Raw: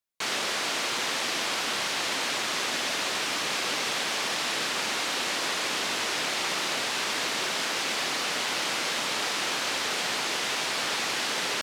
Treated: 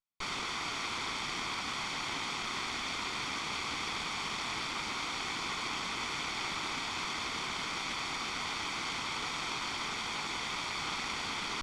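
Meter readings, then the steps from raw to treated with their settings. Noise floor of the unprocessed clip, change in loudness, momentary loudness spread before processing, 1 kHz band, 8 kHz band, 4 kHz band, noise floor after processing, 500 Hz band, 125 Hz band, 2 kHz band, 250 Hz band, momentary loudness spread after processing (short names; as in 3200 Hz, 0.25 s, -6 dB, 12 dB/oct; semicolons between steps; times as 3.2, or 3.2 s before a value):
-30 dBFS, -8.0 dB, 0 LU, -5.0 dB, -11.5 dB, -8.5 dB, -38 dBFS, -12.0 dB, 0.0 dB, -7.5 dB, -5.5 dB, 0 LU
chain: minimum comb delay 0.88 ms; air absorption 79 m; Doppler distortion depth 0.1 ms; gain -4 dB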